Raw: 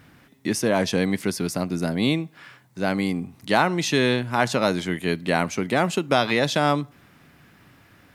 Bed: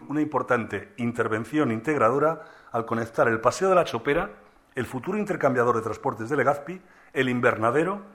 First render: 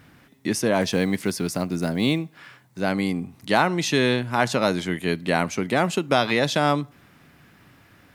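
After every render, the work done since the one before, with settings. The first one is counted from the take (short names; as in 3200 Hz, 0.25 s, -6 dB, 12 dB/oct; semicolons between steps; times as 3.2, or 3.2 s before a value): 0.81–2.83 block floating point 7-bit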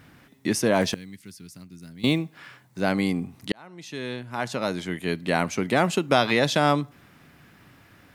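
0.94–2.04 passive tone stack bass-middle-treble 6-0-2; 3.52–5.73 fade in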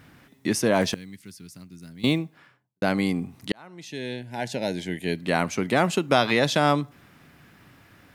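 2.05–2.82 studio fade out; 3.85–5.18 Butterworth band-stop 1200 Hz, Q 1.7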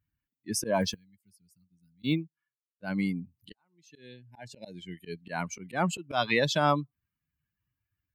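per-bin expansion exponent 2; auto swell 0.107 s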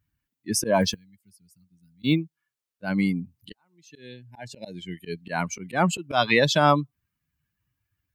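gain +6 dB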